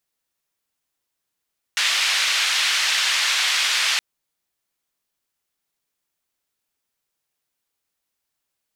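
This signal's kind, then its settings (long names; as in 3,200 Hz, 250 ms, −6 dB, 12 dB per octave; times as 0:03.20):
band-limited noise 1,800–3,800 Hz, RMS −20.5 dBFS 2.22 s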